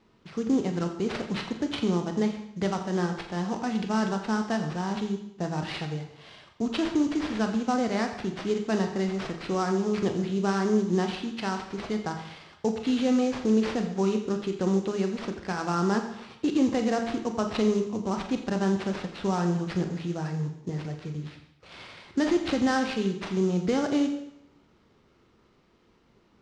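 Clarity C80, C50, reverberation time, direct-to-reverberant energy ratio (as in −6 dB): 9.0 dB, 8.0 dB, 0.75 s, 4.5 dB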